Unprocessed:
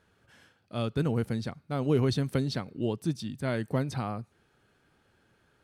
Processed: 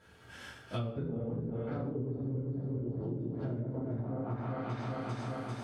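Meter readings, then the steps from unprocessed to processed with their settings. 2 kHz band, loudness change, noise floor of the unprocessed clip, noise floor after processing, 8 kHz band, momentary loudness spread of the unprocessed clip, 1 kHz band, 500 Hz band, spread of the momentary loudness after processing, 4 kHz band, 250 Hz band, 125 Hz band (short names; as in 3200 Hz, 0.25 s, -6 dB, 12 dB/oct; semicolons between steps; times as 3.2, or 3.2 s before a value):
-7.0 dB, -6.5 dB, -69 dBFS, -56 dBFS, under -10 dB, 9 LU, -4.0 dB, -6.5 dB, 3 LU, under -10 dB, -5.0 dB, -4.0 dB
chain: regenerating reverse delay 0.198 s, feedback 72%, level -1 dB; treble ducked by the level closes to 410 Hz, closed at -22.5 dBFS; non-linear reverb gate 0.2 s falling, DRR -8 dB; compressor 12:1, threshold -33 dBFS, peak gain reduction 22.5 dB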